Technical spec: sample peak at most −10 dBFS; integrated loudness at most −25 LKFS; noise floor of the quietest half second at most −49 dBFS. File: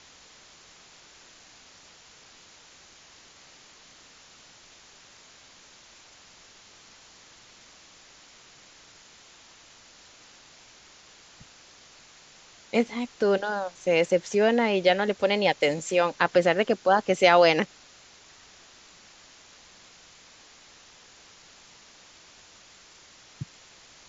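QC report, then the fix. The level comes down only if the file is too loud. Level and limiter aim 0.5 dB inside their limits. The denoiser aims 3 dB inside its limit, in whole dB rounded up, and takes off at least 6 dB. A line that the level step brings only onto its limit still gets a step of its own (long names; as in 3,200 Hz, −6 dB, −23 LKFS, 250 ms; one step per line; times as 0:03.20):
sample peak −4.5 dBFS: out of spec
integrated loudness −23.5 LKFS: out of spec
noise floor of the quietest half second −53 dBFS: in spec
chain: level −2 dB
brickwall limiter −10.5 dBFS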